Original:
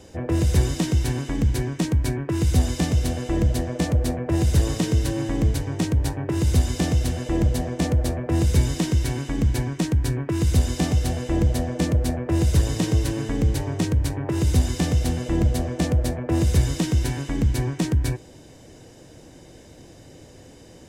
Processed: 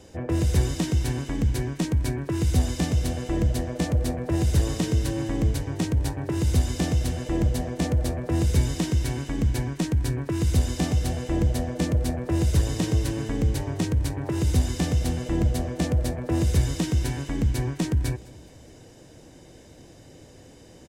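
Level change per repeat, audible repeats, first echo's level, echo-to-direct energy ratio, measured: -5.5 dB, 3, -23.0 dB, -21.5 dB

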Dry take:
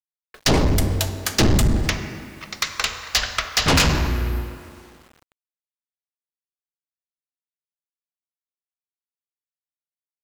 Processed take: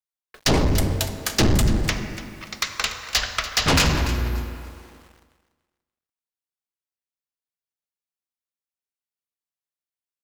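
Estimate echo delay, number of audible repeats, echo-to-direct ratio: 290 ms, 2, -13.5 dB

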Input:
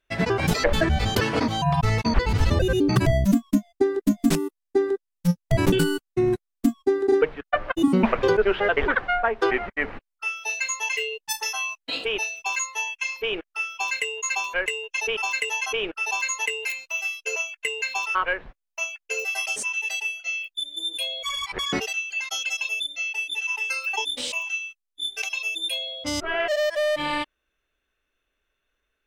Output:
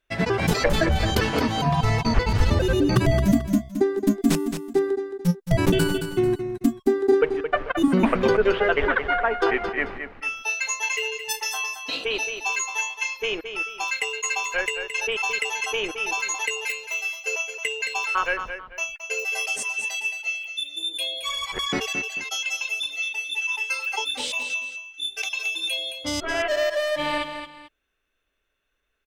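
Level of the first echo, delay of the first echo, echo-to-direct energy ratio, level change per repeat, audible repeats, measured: -8.5 dB, 220 ms, -8.0 dB, -10.0 dB, 2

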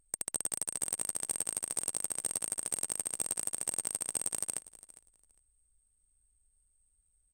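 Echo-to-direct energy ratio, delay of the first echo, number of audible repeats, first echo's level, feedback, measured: -19.0 dB, 405 ms, 2, -19.0 dB, 19%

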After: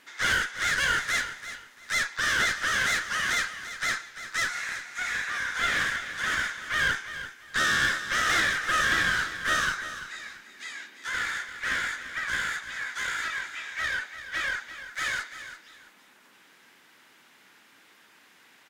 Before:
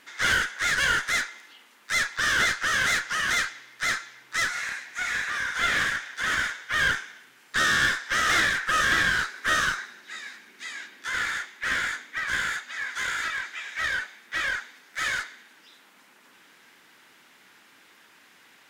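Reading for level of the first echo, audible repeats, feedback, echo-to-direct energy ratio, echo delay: -12.0 dB, 2, 24%, -11.5 dB, 341 ms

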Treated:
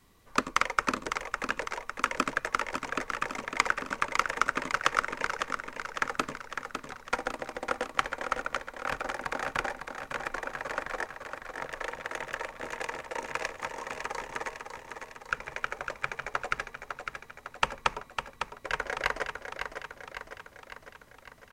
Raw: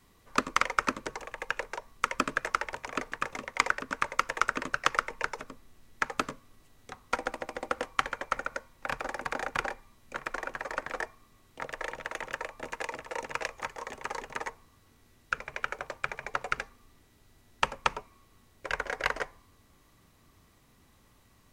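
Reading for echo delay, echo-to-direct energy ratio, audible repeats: 554 ms, -5.0 dB, 6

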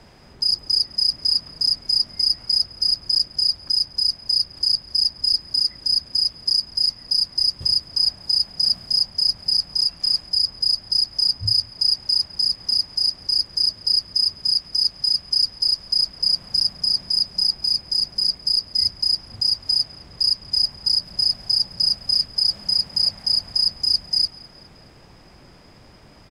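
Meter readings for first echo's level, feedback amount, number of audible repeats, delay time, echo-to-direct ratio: -24.0 dB, 51%, 2, 208 ms, -23.0 dB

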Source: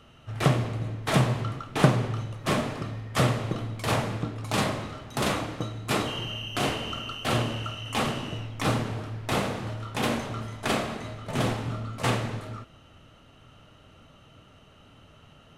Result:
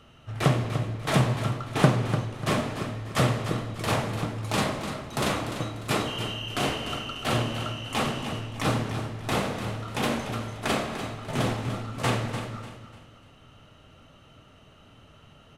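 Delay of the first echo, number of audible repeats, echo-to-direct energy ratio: 296 ms, 3, -9.5 dB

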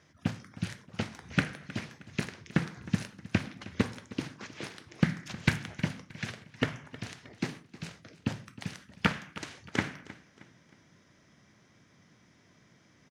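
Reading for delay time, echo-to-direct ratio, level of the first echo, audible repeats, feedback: 313 ms, -17.5 dB, -18.0 dB, 3, 40%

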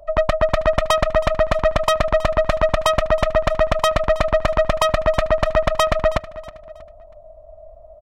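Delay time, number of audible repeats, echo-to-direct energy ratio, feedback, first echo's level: 320 ms, 2, -17.5 dB, 35%, -18.0 dB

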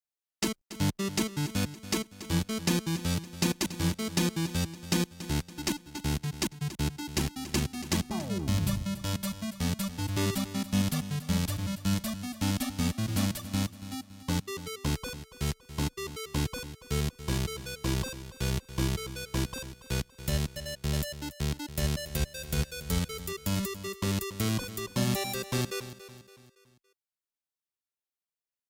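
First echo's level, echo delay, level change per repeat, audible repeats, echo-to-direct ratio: -14.0 dB, 282 ms, -7.0 dB, 3, -13.0 dB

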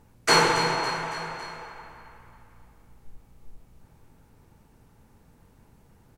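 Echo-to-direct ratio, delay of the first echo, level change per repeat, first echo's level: -10.5 dB, 278 ms, -5.0 dB, -12.0 dB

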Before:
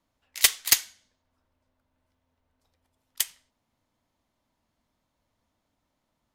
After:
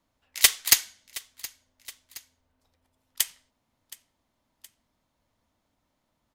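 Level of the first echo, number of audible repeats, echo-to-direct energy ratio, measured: -19.5 dB, 2, -18.5 dB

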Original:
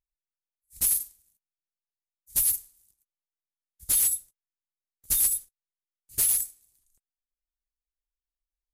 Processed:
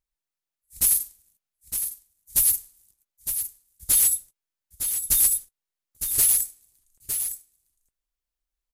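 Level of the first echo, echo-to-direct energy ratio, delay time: -8.0 dB, -8.0 dB, 910 ms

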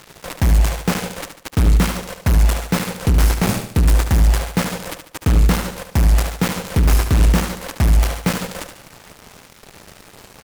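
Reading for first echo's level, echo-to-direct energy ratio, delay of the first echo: -8.5 dB, -7.5 dB, 73 ms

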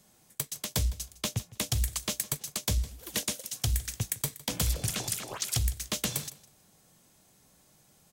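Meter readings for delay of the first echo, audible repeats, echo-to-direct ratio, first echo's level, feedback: 158 ms, 2, -19.0 dB, -19.0 dB, 19%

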